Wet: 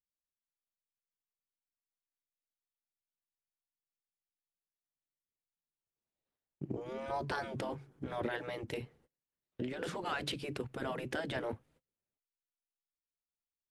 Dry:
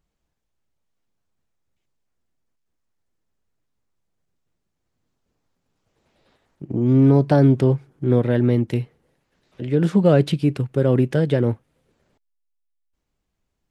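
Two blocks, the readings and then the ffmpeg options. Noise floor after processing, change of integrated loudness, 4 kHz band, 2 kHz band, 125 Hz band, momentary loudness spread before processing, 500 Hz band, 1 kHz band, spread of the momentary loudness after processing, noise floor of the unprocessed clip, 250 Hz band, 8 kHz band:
under -85 dBFS, -21.0 dB, -6.0 dB, -6.0 dB, -28.0 dB, 11 LU, -19.5 dB, -8.5 dB, 7 LU, -77 dBFS, -24.5 dB, no reading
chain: -af "agate=range=0.0447:threshold=0.00251:ratio=16:detection=peak,afftfilt=real='re*lt(hypot(re,im),0.398)':imag='im*lt(hypot(re,im),0.398)':win_size=1024:overlap=0.75,volume=0.501"

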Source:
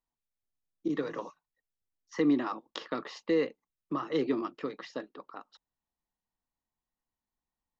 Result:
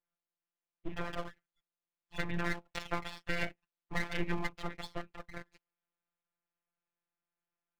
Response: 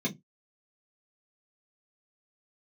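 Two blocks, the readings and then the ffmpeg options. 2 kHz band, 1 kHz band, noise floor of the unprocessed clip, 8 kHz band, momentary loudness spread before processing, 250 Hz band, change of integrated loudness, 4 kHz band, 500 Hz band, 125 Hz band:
+5.0 dB, -3.0 dB, under -85 dBFS, no reading, 18 LU, -11.0 dB, -6.5 dB, 0.0 dB, -10.5 dB, +4.5 dB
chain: -af "lowshelf=f=440:g=-7,highpass=f=200:t=q:w=0.5412,highpass=f=200:t=q:w=1.307,lowpass=f=3000:t=q:w=0.5176,lowpass=f=3000:t=q:w=0.7071,lowpass=f=3000:t=q:w=1.932,afreqshift=-210,afftfilt=real='hypot(re,im)*cos(PI*b)':imag='0':win_size=1024:overlap=0.75,aeval=exprs='abs(val(0))':c=same,adynamicequalizer=threshold=0.00178:dfrequency=1900:dqfactor=0.7:tfrequency=1900:tqfactor=0.7:attack=5:release=100:ratio=0.375:range=2.5:mode=boostabove:tftype=highshelf,volume=2.11"

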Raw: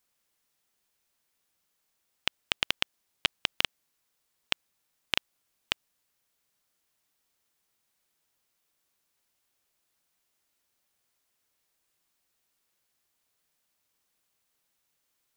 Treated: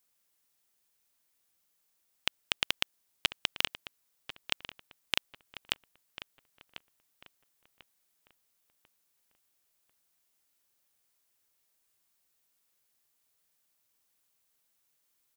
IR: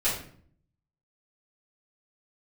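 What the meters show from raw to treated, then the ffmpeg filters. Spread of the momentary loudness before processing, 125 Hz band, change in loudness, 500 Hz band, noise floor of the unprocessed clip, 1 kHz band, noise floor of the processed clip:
5 LU, -2.5 dB, -2.0 dB, -2.5 dB, -78 dBFS, -2.5 dB, -76 dBFS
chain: -filter_complex "[0:a]highshelf=f=7100:g=7,asplit=2[s0][s1];[s1]adelay=1044,lowpass=f=2500:p=1,volume=0.251,asplit=2[s2][s3];[s3]adelay=1044,lowpass=f=2500:p=1,volume=0.37,asplit=2[s4][s5];[s5]adelay=1044,lowpass=f=2500:p=1,volume=0.37,asplit=2[s6][s7];[s7]adelay=1044,lowpass=f=2500:p=1,volume=0.37[s8];[s2][s4][s6][s8]amix=inputs=4:normalize=0[s9];[s0][s9]amix=inputs=2:normalize=0,volume=0.708"

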